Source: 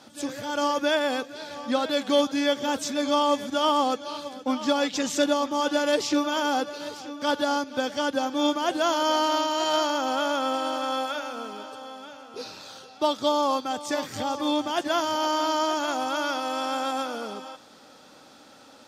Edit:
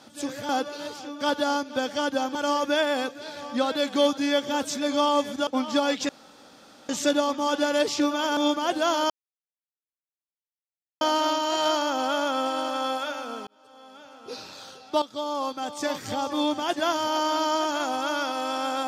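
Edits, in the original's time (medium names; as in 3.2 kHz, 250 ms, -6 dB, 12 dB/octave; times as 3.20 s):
3.61–4.40 s: delete
5.02 s: insert room tone 0.80 s
6.50–8.36 s: move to 0.49 s
9.09 s: insert silence 1.91 s
11.55–12.48 s: fade in
13.10–13.98 s: fade in, from -12 dB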